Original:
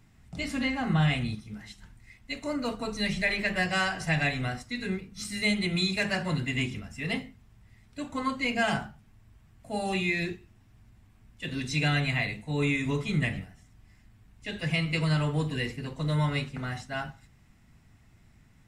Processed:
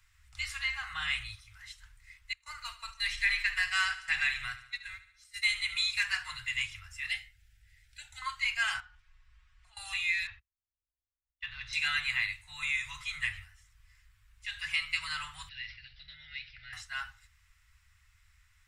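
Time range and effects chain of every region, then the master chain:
2.33–5.82 s: gate -34 dBFS, range -22 dB + feedback delay 72 ms, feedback 53%, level -13.5 dB
7.08–8.22 s: upward compressor, threshold -52 dBFS + Butterworth band-stop 1.1 kHz, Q 1.7
8.80–9.77 s: low-pass 4.8 kHz + compression 3:1, threshold -46 dBFS + comb 5.5 ms, depth 68%
10.27–11.73 s: gate -49 dBFS, range -34 dB + waveshaping leveller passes 1 + distance through air 280 m
15.49–16.73 s: compression 2.5:1, threshold -35 dBFS + Chebyshev band-stop 580–1900 Hz + careless resampling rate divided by 4×, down none, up filtered
whole clip: inverse Chebyshev band-stop 190–510 Hz, stop band 60 dB; bass shelf 220 Hz -4 dB

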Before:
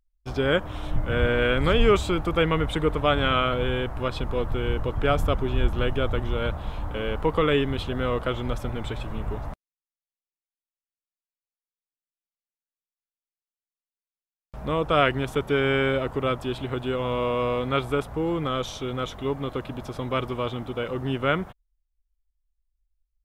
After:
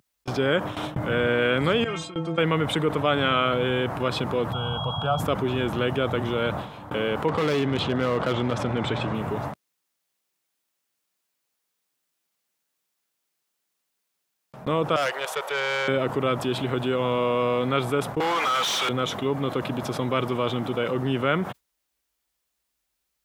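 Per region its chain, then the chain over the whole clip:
1.84–2.38 s: low-pass 8.3 kHz 24 dB/octave + inharmonic resonator 160 Hz, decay 0.28 s, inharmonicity 0.008
4.52–5.19 s: FFT filter 160 Hz 0 dB, 350 Hz -21 dB, 720 Hz +3 dB, 5 kHz -9 dB + whistle 3.3 kHz -39 dBFS + Butterworth band-stop 2 kHz, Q 1.4
7.28–9.15 s: distance through air 84 m + overload inside the chain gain 22 dB + level flattener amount 50%
14.96–15.88 s: Chebyshev high-pass 510 Hz, order 4 + valve stage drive 23 dB, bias 0.5
18.20–18.89 s: high-pass 820 Hz + tilt EQ +2 dB/octave + overdrive pedal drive 29 dB, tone 2.1 kHz, clips at -17.5 dBFS
whole clip: high-pass 120 Hz 24 dB/octave; gate with hold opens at -27 dBFS; level flattener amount 50%; trim -1.5 dB

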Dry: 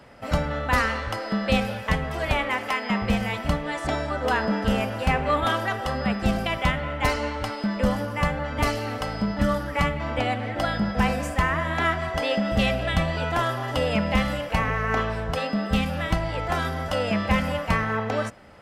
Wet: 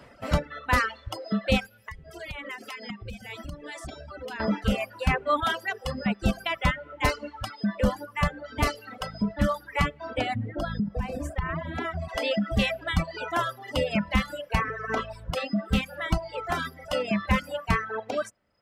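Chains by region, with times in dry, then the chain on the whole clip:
1.66–4.40 s: peaking EQ 1 kHz -8 dB 1.6 oct + compression, threshold -30 dBFS + hum notches 50/100/150/200/250/300 Hz
10.35–12.09 s: tilt shelf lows +6.5 dB, about 640 Hz + compression 10:1, threshold -20 dBFS
whole clip: reverb removal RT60 1.8 s; band-stop 810 Hz, Q 12; reverb removal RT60 1.4 s

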